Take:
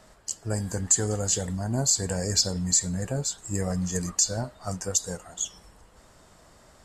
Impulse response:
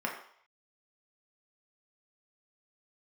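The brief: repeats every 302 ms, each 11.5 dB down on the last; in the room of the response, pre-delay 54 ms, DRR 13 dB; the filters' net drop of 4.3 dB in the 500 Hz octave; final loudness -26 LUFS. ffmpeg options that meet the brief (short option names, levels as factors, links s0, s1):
-filter_complex "[0:a]equalizer=f=500:t=o:g=-5,aecho=1:1:302|604|906:0.266|0.0718|0.0194,asplit=2[s0][s1];[1:a]atrim=start_sample=2205,adelay=54[s2];[s1][s2]afir=irnorm=-1:irlink=0,volume=0.106[s3];[s0][s3]amix=inputs=2:normalize=0,volume=1.06"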